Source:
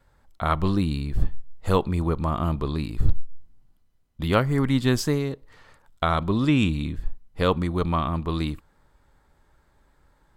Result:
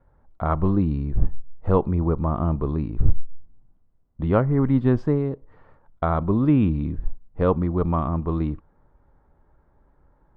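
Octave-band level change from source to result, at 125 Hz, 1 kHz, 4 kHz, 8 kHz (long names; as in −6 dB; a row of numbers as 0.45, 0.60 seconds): +2.5 dB, −1.0 dB, below −15 dB, below −30 dB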